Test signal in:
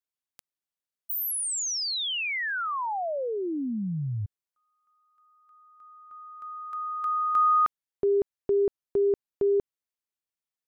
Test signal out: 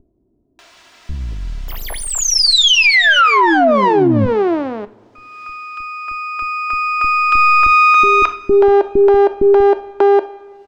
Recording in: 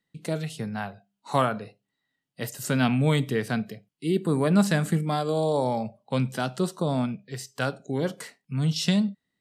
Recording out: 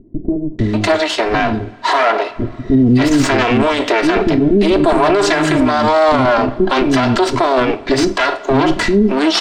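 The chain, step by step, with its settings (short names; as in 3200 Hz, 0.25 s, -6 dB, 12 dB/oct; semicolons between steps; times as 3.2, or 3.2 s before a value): minimum comb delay 3 ms; low shelf 160 Hz -10.5 dB; in parallel at -1 dB: upward compressor, threshold -30 dBFS; on the sum: soft clip -16.5 dBFS; air absorption 150 m; bands offset in time lows, highs 0.59 s, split 340 Hz; two-slope reverb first 0.3 s, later 2.4 s, from -21 dB, DRR 12 dB; maximiser +25 dB; gain -3.5 dB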